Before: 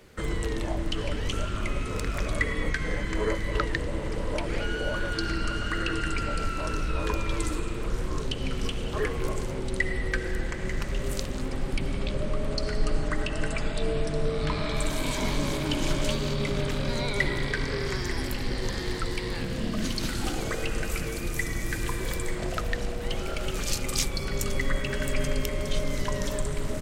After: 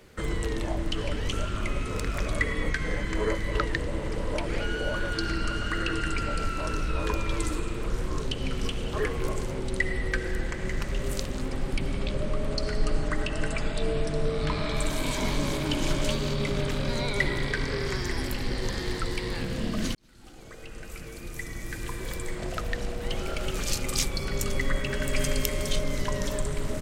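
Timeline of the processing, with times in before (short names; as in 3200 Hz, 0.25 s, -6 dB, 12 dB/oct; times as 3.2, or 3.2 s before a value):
19.95–23.26 fade in
25.13–25.76 high shelf 3700 Hz +8.5 dB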